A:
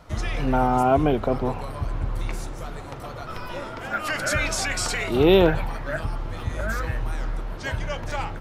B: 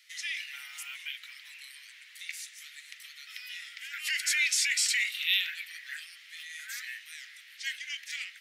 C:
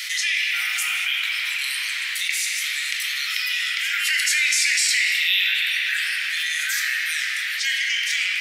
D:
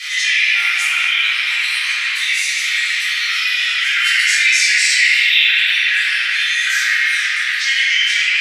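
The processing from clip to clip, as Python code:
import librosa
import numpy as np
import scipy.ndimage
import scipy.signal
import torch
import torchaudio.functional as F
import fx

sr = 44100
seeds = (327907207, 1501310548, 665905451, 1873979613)

y1 = scipy.signal.sosfilt(scipy.signal.cheby1(5, 1.0, 1900.0, 'highpass', fs=sr, output='sos'), x)
y1 = y1 * librosa.db_to_amplitude(2.0)
y2 = fx.room_shoebox(y1, sr, seeds[0], volume_m3=190.0, walls='hard', distance_m=0.48)
y2 = fx.env_flatten(y2, sr, amount_pct=70)
y2 = y2 * librosa.db_to_amplitude(4.0)
y3 = fx.air_absorb(y2, sr, metres=52.0)
y3 = fx.room_shoebox(y3, sr, seeds[1], volume_m3=270.0, walls='mixed', distance_m=3.7)
y3 = y3 * librosa.db_to_amplitude(-2.0)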